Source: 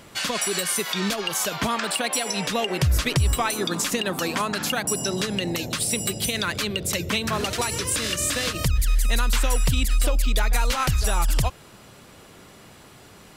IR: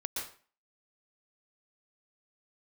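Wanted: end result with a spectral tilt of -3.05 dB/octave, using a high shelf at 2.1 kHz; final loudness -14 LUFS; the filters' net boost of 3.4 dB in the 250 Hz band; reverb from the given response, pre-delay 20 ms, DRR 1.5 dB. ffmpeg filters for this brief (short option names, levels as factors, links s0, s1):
-filter_complex "[0:a]equalizer=f=250:t=o:g=4.5,highshelf=f=2100:g=6,asplit=2[s0][s1];[1:a]atrim=start_sample=2205,adelay=20[s2];[s1][s2]afir=irnorm=-1:irlink=0,volume=0.631[s3];[s0][s3]amix=inputs=2:normalize=0,volume=1.68"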